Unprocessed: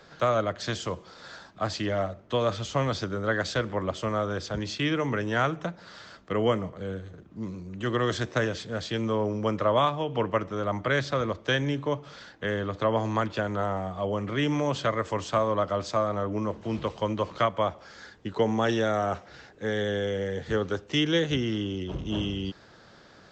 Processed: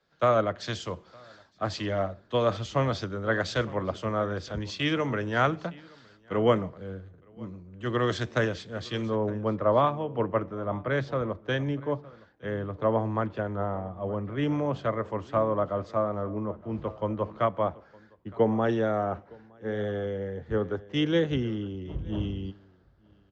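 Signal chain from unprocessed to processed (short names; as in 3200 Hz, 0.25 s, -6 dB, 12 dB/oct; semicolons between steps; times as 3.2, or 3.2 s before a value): LPF 3100 Hz 6 dB/oct, from 9.07 s 1100 Hz; echo 0.916 s -17.5 dB; three-band expander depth 70%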